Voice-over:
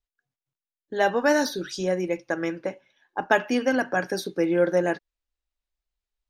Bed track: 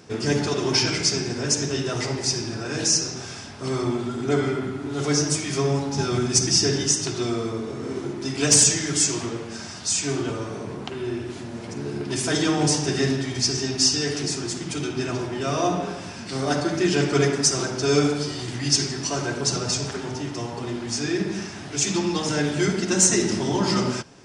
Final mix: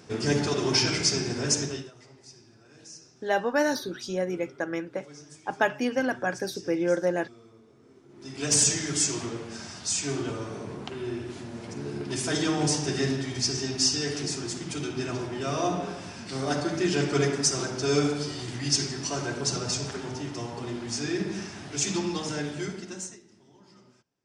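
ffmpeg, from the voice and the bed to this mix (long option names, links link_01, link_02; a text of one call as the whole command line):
ffmpeg -i stem1.wav -i stem2.wav -filter_complex "[0:a]adelay=2300,volume=-3.5dB[link_01];[1:a]volume=19dB,afade=type=out:start_time=1.56:duration=0.35:silence=0.0668344,afade=type=in:start_time=8.08:duration=0.62:silence=0.0841395,afade=type=out:start_time=21.94:duration=1.26:silence=0.0334965[link_02];[link_01][link_02]amix=inputs=2:normalize=0" out.wav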